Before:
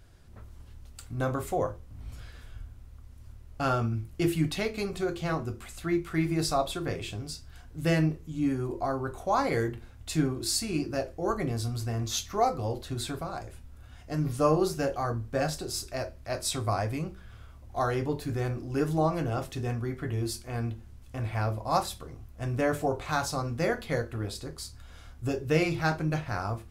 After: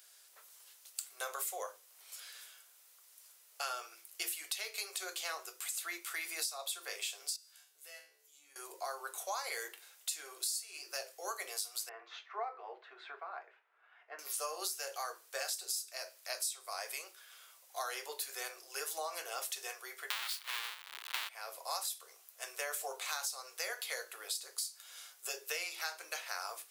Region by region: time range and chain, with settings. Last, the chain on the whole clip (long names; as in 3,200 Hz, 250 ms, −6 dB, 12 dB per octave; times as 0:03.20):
0:07.36–0:08.56: downward compressor 2.5 to 1, threshold −39 dBFS + tuned comb filter 73 Hz, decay 0.49 s, mix 90%
0:11.89–0:14.19: low-pass filter 2,000 Hz 24 dB per octave + notch filter 540 Hz, Q 6.2
0:20.10–0:21.29: each half-wave held at its own peak + flat-topped bell 1,900 Hz +15 dB 2.6 octaves
whole clip: Butterworth high-pass 410 Hz 48 dB per octave; first difference; downward compressor 12 to 1, threshold −46 dBFS; level +11 dB